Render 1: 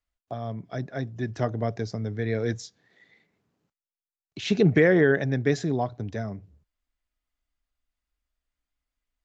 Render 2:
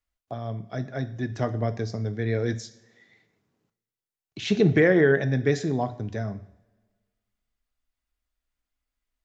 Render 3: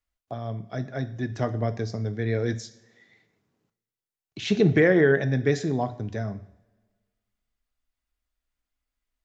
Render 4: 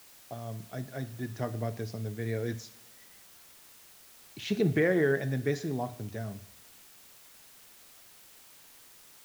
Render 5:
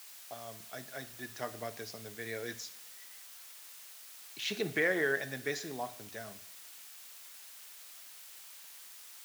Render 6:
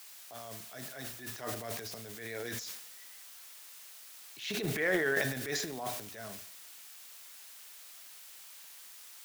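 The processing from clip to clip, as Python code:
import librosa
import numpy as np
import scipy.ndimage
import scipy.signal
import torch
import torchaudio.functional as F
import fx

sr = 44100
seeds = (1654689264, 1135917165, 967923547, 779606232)

y1 = fx.rev_double_slope(x, sr, seeds[0], early_s=0.5, late_s=1.6, knee_db=-18, drr_db=10.0)
y2 = y1
y3 = fx.quant_dither(y2, sr, seeds[1], bits=8, dither='triangular')
y3 = y3 * librosa.db_to_amplitude(-7.0)
y4 = fx.highpass(y3, sr, hz=1400.0, slope=6)
y4 = y4 * librosa.db_to_amplitude(4.0)
y5 = fx.transient(y4, sr, attack_db=-8, sustain_db=11)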